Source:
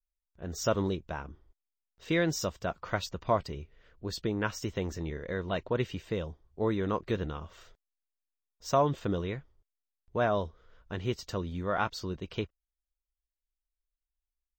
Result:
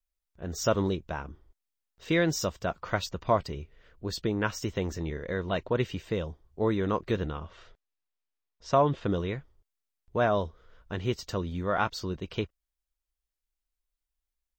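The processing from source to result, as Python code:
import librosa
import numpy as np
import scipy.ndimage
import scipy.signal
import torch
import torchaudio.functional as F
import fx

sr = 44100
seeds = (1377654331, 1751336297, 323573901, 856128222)

y = fx.lowpass(x, sr, hz=4300.0, slope=12, at=(7.29, 9.06))
y = F.gain(torch.from_numpy(y), 2.5).numpy()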